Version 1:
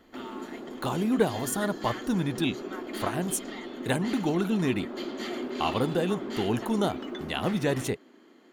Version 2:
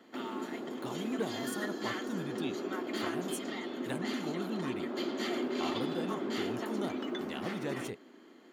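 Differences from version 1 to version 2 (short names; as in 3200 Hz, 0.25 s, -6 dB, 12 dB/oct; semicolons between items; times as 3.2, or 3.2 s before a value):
speech -12.0 dB; master: add HPF 100 Hz 12 dB/oct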